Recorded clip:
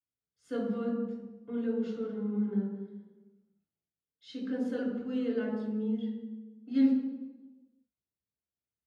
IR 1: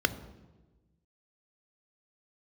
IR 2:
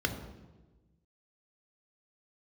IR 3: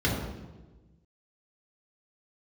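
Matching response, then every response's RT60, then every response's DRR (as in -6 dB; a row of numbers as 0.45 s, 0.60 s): 3; 1.2 s, 1.2 s, 1.2 s; 11.5 dB, 5.0 dB, -4.5 dB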